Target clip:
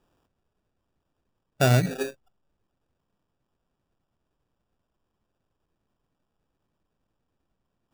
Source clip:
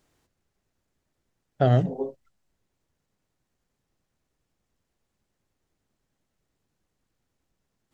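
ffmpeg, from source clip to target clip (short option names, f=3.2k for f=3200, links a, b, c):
-af "acrusher=samples=21:mix=1:aa=0.000001"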